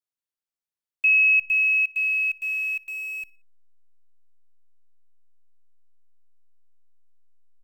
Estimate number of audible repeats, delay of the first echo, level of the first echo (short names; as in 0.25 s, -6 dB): 2, 60 ms, -24.0 dB